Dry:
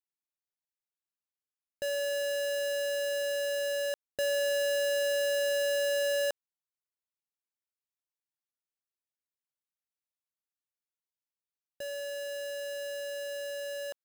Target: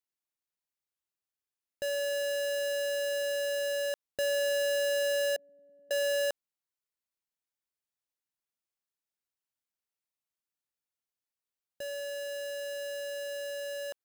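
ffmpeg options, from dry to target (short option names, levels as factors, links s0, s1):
-filter_complex "[0:a]asettb=1/sr,asplit=3[s0][s1][s2];[s0]atrim=end=5.364[s3];[s1]atrim=start=5.36:end=5.91,asetpts=PTS-STARTPTS,afade=t=in:d=0.004:c=qsin,afade=t=out:st=0.546:d=0.004:c=qsin,asuperpass=centerf=200:order=4:qfactor=2.3[s4];[s2]atrim=start=5.906[s5];[s3][s4]acrossfade=d=0.004:c1=hsin:c2=qsin[s6];[s6][s5]acrossfade=d=0.004:c1=qsin:c2=hsin"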